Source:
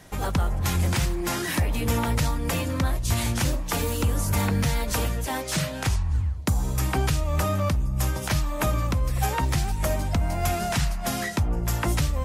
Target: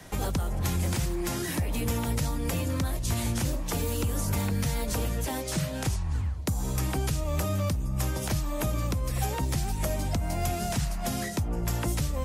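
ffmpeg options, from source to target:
ffmpeg -i in.wav -filter_complex "[0:a]acrossover=split=140|680|2200|5500[link_01][link_02][link_03][link_04][link_05];[link_01]acompressor=threshold=-31dB:ratio=4[link_06];[link_02]acompressor=threshold=-34dB:ratio=4[link_07];[link_03]acompressor=threshold=-46dB:ratio=4[link_08];[link_04]acompressor=threshold=-46dB:ratio=4[link_09];[link_05]acompressor=threshold=-39dB:ratio=4[link_10];[link_06][link_07][link_08][link_09][link_10]amix=inputs=5:normalize=0,volume=2dB" out.wav

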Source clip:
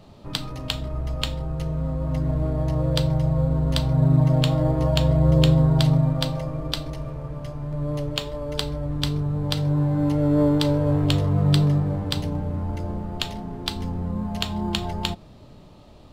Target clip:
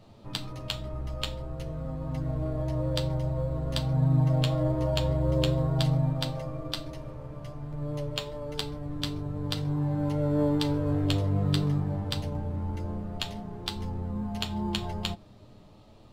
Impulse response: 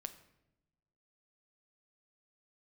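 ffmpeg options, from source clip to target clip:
-af "flanger=delay=8.8:depth=1.1:regen=-25:speed=0.49:shape=triangular,volume=-2dB"

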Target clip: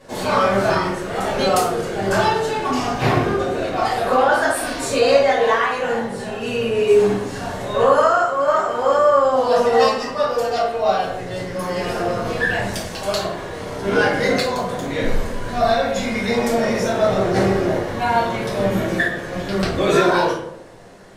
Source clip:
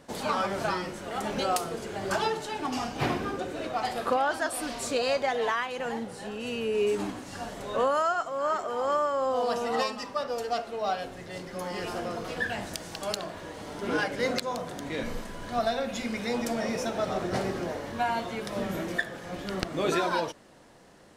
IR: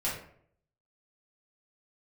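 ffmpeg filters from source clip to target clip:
-filter_complex "[1:a]atrim=start_sample=2205,asetrate=33957,aresample=44100[link_01];[0:a][link_01]afir=irnorm=-1:irlink=0,volume=2.5dB"

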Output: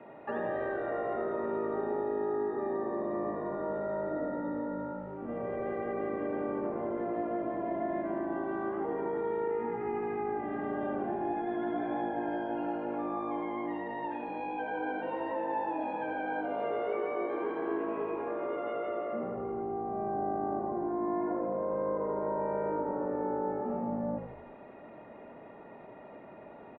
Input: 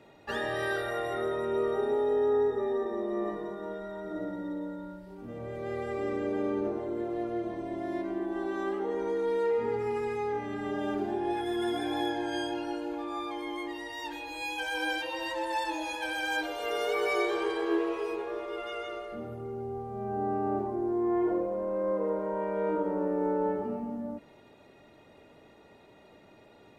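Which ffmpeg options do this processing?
ffmpeg -i in.wav -filter_complex "[0:a]acrossover=split=300|860[link_01][link_02][link_03];[link_01]acompressor=threshold=-49dB:ratio=4[link_04];[link_02]acompressor=threshold=-42dB:ratio=4[link_05];[link_03]acompressor=threshold=-50dB:ratio=4[link_06];[link_04][link_05][link_06]amix=inputs=3:normalize=0,highpass=170,equalizer=frequency=230:width_type=q:width=4:gain=5,equalizer=frequency=660:width_type=q:width=4:gain=6,equalizer=frequency=1000:width_type=q:width=4:gain=5,lowpass=frequency=2200:width=0.5412,lowpass=frequency=2200:width=1.3066,asplit=7[link_07][link_08][link_09][link_10][link_11][link_12][link_13];[link_08]adelay=81,afreqshift=-53,volume=-8dB[link_14];[link_09]adelay=162,afreqshift=-106,volume=-14.4dB[link_15];[link_10]adelay=243,afreqshift=-159,volume=-20.8dB[link_16];[link_11]adelay=324,afreqshift=-212,volume=-27.1dB[link_17];[link_12]adelay=405,afreqshift=-265,volume=-33.5dB[link_18];[link_13]adelay=486,afreqshift=-318,volume=-39.9dB[link_19];[link_07][link_14][link_15][link_16][link_17][link_18][link_19]amix=inputs=7:normalize=0,volume=4dB" out.wav

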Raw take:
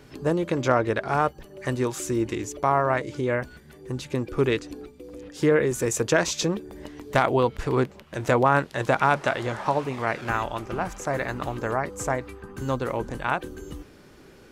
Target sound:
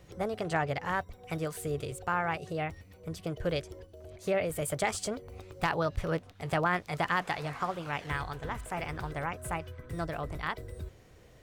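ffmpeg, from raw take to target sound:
ffmpeg -i in.wav -af "lowshelf=frequency=120:width_type=q:width=1.5:gain=8,asetrate=56007,aresample=44100,volume=-8.5dB" out.wav

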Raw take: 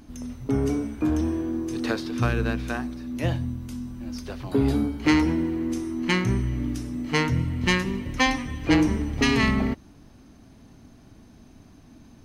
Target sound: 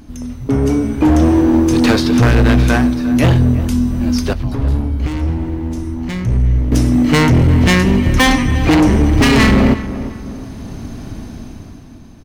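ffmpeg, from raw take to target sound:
ffmpeg -i in.wav -filter_complex "[0:a]alimiter=limit=-13dB:level=0:latency=1:release=382,lowshelf=frequency=170:gain=4.5,dynaudnorm=framelen=150:gausssize=13:maxgain=13.5dB,asoftclip=type=hard:threshold=-14.5dB,asettb=1/sr,asplit=3[link_01][link_02][link_03];[link_01]atrim=end=4.334[link_04];[link_02]atrim=start=4.33:end=6.72,asetpts=PTS-STARTPTS,afade=type=in:duration=0.004:curve=qsin,afade=type=out:start_time=2.386:duration=0.004:curve=qsin,acrossover=split=120[link_05][link_06];[link_06]acompressor=threshold=-57dB:ratio=1.5[link_07];[link_05][link_07]amix=inputs=2:normalize=0[link_08];[link_03]atrim=start=6.716[link_09];[link_04][link_08]acrossfade=duration=0.004:curve1=hsin:curve2=qsin[link_10];[link_10][link_09]acrossfade=duration=0.004:curve1=qsin:curve2=hsin,asplit=2[link_11][link_12];[link_12]adelay=354,lowpass=frequency=1600:poles=1,volume=-13dB,asplit=2[link_13][link_14];[link_14]adelay=354,lowpass=frequency=1600:poles=1,volume=0.43,asplit=2[link_15][link_16];[link_16]adelay=354,lowpass=frequency=1600:poles=1,volume=0.43,asplit=2[link_17][link_18];[link_18]adelay=354,lowpass=frequency=1600:poles=1,volume=0.43[link_19];[link_11][link_13][link_15][link_17][link_19]amix=inputs=5:normalize=0,volume=7dB" out.wav

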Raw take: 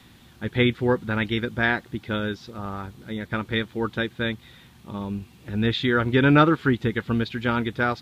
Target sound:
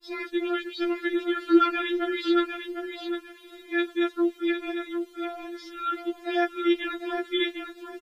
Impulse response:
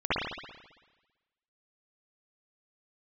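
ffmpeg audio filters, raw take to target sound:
-af "areverse,aecho=1:1:753|1506|2259:0.447|0.0804|0.0145,afftfilt=real='re*4*eq(mod(b,16),0)':imag='im*4*eq(mod(b,16),0)':win_size=2048:overlap=0.75"

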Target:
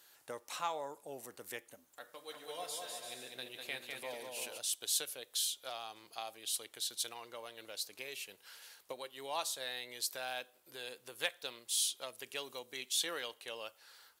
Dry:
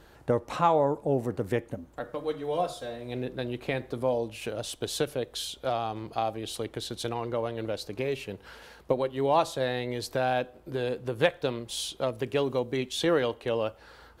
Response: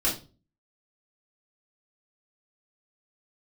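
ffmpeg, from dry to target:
-filter_complex "[0:a]aderivative,asplit=3[link_01][link_02][link_03];[link_01]afade=type=out:start_time=2.29:duration=0.02[link_04];[link_02]aecho=1:1:200|340|438|506.6|554.6:0.631|0.398|0.251|0.158|0.1,afade=type=in:start_time=2.29:duration=0.02,afade=type=out:start_time=4.57:duration=0.02[link_05];[link_03]afade=type=in:start_time=4.57:duration=0.02[link_06];[link_04][link_05][link_06]amix=inputs=3:normalize=0,volume=3.5dB"

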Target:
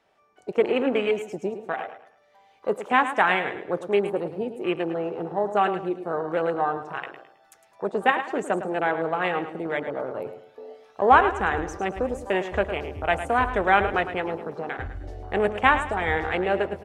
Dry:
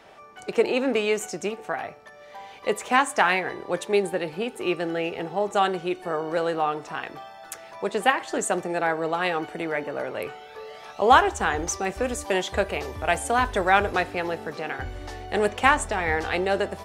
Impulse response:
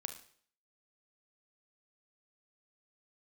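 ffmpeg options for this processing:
-filter_complex "[0:a]afwtdn=0.0282,asplit=2[link_01][link_02];[link_02]aecho=0:1:107|214|321|428:0.282|0.093|0.0307|0.0101[link_03];[link_01][link_03]amix=inputs=2:normalize=0"

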